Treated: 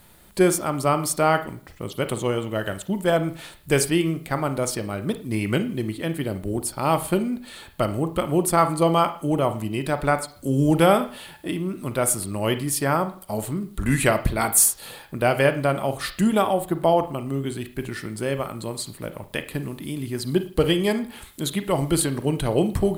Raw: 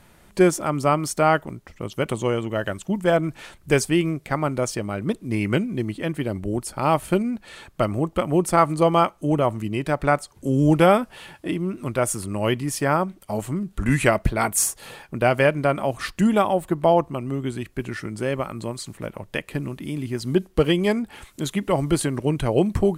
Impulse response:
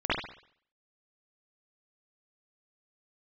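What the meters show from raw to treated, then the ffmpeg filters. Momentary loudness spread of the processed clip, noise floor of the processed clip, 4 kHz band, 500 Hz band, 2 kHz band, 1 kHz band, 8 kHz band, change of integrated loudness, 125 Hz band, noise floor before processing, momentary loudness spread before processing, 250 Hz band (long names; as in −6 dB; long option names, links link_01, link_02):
12 LU, −49 dBFS, +2.0 dB, −1.0 dB, −1.0 dB, −1.0 dB, +4.5 dB, −0.5 dB, −1.0 dB, −54 dBFS, 12 LU, −1.0 dB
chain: -filter_complex "[0:a]acrusher=bits=10:mix=0:aa=0.000001,aexciter=amount=2.1:drive=2.1:freq=3400,asplit=2[link_01][link_02];[1:a]atrim=start_sample=2205,asetrate=57330,aresample=44100[link_03];[link_02][link_03]afir=irnorm=-1:irlink=0,volume=-19.5dB[link_04];[link_01][link_04]amix=inputs=2:normalize=0,volume=-2dB"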